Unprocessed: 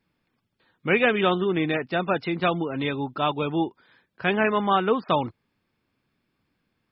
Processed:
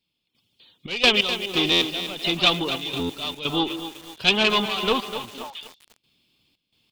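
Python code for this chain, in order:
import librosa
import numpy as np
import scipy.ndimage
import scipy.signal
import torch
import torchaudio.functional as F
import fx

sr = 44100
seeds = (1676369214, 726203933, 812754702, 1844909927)

y = fx.diode_clip(x, sr, knee_db=-23.0)
y = fx.high_shelf_res(y, sr, hz=2300.0, db=11.0, q=3.0)
y = fx.echo_stepped(y, sr, ms=150, hz=340.0, octaves=1.4, feedback_pct=70, wet_db=-8)
y = fx.step_gate(y, sr, bpm=87, pattern='..xxx.x..xx', floor_db=-12.0, edge_ms=4.5)
y = fx.dynamic_eq(y, sr, hz=1200.0, q=1.5, threshold_db=-42.0, ratio=4.0, max_db=7)
y = fx.buffer_glitch(y, sr, at_s=(1.71, 2.99, 5.05), block=512, repeats=8)
y = fx.echo_crushed(y, sr, ms=250, feedback_pct=55, bits=6, wet_db=-10.0)
y = F.gain(torch.from_numpy(y), 1.5).numpy()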